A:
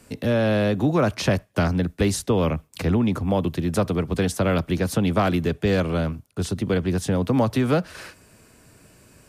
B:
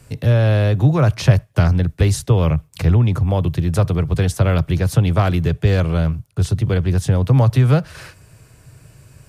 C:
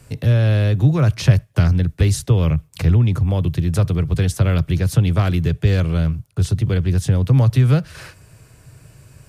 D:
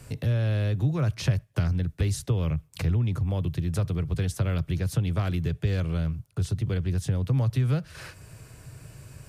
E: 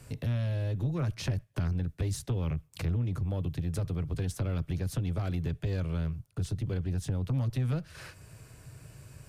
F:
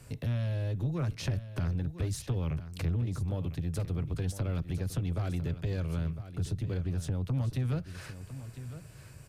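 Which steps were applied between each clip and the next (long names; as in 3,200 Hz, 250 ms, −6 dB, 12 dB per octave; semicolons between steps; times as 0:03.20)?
low shelf with overshoot 170 Hz +7 dB, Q 3; level +1.5 dB
dynamic equaliser 800 Hz, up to −7 dB, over −34 dBFS, Q 0.85
downward compressor 1.5 to 1, threshold −40 dBFS, peak gain reduction 12 dB
tube saturation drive 21 dB, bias 0.45; level −2.5 dB
single-tap delay 1,005 ms −12.5 dB; level −1 dB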